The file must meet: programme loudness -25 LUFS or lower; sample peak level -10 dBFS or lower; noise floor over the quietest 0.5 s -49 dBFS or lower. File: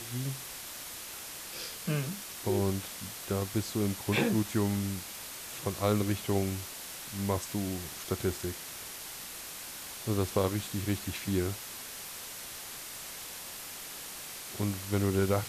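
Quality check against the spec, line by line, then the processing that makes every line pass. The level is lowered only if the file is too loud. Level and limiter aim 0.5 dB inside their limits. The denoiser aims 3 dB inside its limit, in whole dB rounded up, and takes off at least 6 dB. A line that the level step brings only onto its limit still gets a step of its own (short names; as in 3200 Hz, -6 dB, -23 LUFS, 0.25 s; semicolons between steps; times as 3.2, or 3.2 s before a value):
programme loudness -34.0 LUFS: OK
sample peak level -15.0 dBFS: OK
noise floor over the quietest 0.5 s -43 dBFS: fail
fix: denoiser 9 dB, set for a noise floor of -43 dBFS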